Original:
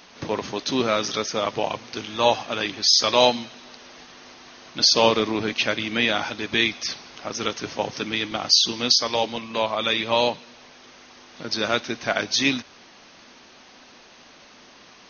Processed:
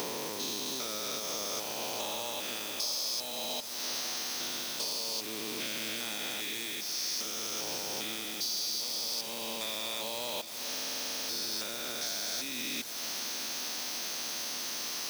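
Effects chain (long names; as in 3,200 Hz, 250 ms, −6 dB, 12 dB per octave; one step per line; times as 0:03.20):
spectrum averaged block by block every 400 ms
downward compressor 10 to 1, threshold −39 dBFS, peak gain reduction 20.5 dB
soft clipping −35.5 dBFS, distortion −17 dB
bass and treble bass −4 dB, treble +11 dB
speech leveller within 4 dB 0.5 s
bit reduction 8 bits
high-pass filter 95 Hz
high-shelf EQ 5,900 Hz +9.5 dB
feedback delay with all-pass diffusion 648 ms, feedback 72%, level −13 dB
buffer that repeats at 0:10.69, samples 2,048, times 12
level +2 dB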